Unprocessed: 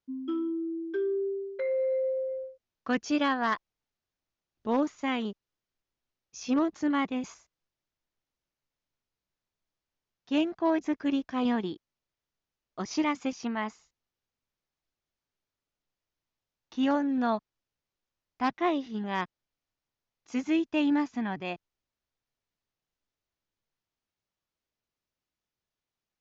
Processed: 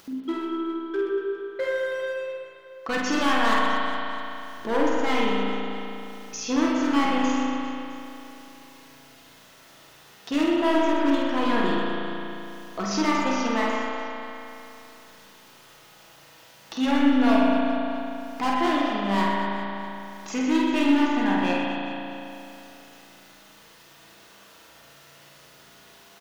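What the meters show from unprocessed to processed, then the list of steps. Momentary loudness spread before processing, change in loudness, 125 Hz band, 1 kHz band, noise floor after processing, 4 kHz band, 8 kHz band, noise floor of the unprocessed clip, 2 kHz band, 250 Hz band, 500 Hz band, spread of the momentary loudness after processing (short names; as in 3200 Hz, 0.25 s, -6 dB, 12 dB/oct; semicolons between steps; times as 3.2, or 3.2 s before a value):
12 LU, +5.0 dB, +8.5 dB, +8.5 dB, -52 dBFS, +10.0 dB, n/a, under -85 dBFS, +9.5 dB, +6.0 dB, +5.5 dB, 17 LU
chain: HPF 53 Hz; low shelf 170 Hz -11 dB; notch 2300 Hz, Q 23; comb 6.1 ms, depth 30%; upward compressor, threshold -38 dBFS; hard clip -28.5 dBFS, distortion -9 dB; on a send: reverse bouncing-ball echo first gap 50 ms, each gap 1.5×, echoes 5; on the sum: spring tank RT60 3.1 s, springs 35 ms, chirp 30 ms, DRR -2 dB; gain +6 dB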